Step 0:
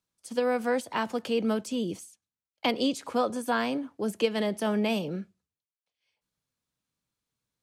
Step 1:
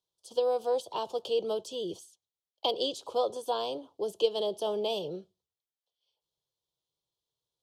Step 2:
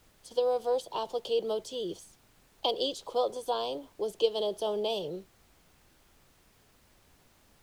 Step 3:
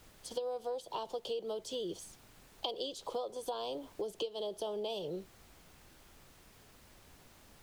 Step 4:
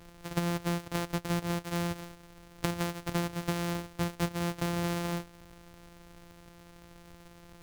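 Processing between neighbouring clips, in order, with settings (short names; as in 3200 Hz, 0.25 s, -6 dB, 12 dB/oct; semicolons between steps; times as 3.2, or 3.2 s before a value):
EQ curve 160 Hz 0 dB, 240 Hz -13 dB, 370 Hz +9 dB, 990 Hz +5 dB, 2000 Hz -23 dB, 3200 Hz +11 dB, 8200 Hz +1 dB; gain -8 dB
added noise pink -63 dBFS
compressor 8:1, threshold -39 dBFS, peak gain reduction 18.5 dB; gain +3.5 dB
sample sorter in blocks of 256 samples; gain +6.5 dB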